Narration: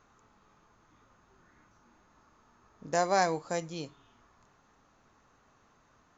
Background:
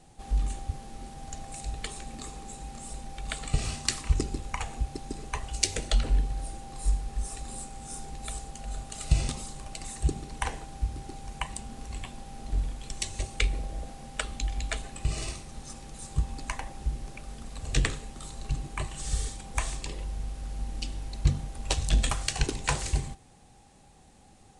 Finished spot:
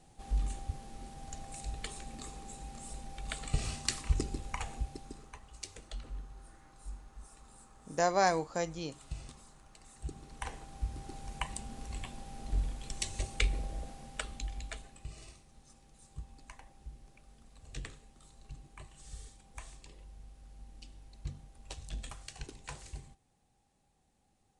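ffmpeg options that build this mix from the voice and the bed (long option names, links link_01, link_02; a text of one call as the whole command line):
ffmpeg -i stem1.wav -i stem2.wav -filter_complex "[0:a]adelay=5050,volume=-1dB[link_01];[1:a]volume=10dB,afade=type=out:start_time=4.71:duration=0.67:silence=0.211349,afade=type=in:start_time=9.89:duration=1.41:silence=0.177828,afade=type=out:start_time=13.66:duration=1.47:silence=0.199526[link_02];[link_01][link_02]amix=inputs=2:normalize=0" out.wav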